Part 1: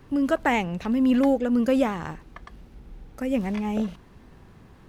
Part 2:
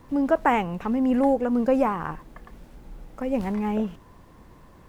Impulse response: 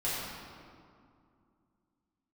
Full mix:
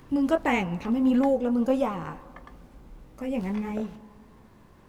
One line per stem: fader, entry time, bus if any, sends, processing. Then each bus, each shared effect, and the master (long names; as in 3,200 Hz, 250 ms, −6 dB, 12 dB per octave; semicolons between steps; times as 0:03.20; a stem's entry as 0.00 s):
−1.5 dB, 0.00 s, no send, automatic ducking −7 dB, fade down 1.95 s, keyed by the second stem
−2.5 dB, 0.00 s, send −23 dB, low-shelf EQ 150 Hz −6 dB; upward compression, threshold −49 dBFS; chorus effect 1.6 Hz, delay 16 ms, depth 6.1 ms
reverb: on, RT60 2.4 s, pre-delay 5 ms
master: no processing